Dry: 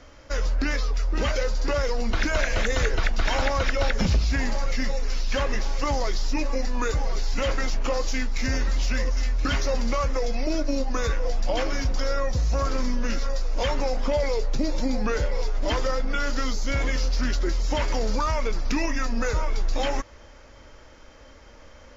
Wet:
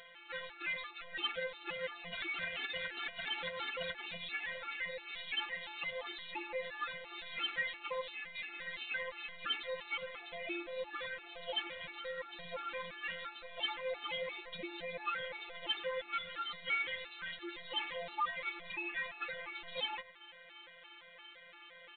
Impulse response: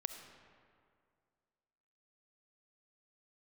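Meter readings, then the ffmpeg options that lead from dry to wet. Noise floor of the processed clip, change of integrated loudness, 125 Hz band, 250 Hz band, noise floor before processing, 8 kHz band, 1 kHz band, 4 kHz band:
−57 dBFS, −13.0 dB, −34.0 dB, −24.0 dB, −48 dBFS, can't be measured, −12.5 dB, −6.0 dB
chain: -filter_complex "[0:a]aderivative,acontrast=84,alimiter=limit=-24dB:level=0:latency=1:release=431,acompressor=mode=upward:threshold=-48dB:ratio=2.5,afftfilt=real='hypot(re,im)*cos(PI*b)':imag='0':win_size=1024:overlap=0.75,aresample=8000,asoftclip=type=hard:threshold=-36.5dB,aresample=44100,asplit=2[link_01][link_02];[link_02]adelay=104,lowpass=frequency=1800:poles=1,volume=-11.5dB,asplit=2[link_03][link_04];[link_04]adelay=104,lowpass=frequency=1800:poles=1,volume=0.17[link_05];[link_01][link_03][link_05]amix=inputs=3:normalize=0,afftfilt=real='re*gt(sin(2*PI*2.9*pts/sr)*(1-2*mod(floor(b*sr/1024/230),2)),0)':imag='im*gt(sin(2*PI*2.9*pts/sr)*(1-2*mod(floor(b*sr/1024/230),2)),0)':win_size=1024:overlap=0.75,volume=8.5dB"

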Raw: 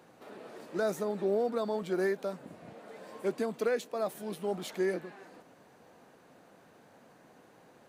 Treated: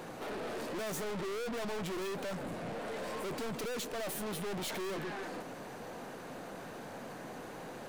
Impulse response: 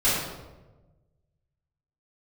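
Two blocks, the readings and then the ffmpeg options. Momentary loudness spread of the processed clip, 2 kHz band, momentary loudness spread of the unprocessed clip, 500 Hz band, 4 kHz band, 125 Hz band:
8 LU, 0.0 dB, 18 LU, −6.0 dB, +5.5 dB, +1.5 dB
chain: -af "aeval=exprs='(tanh(398*val(0)+0.25)-tanh(0.25))/398':channel_layout=same,volume=15dB"

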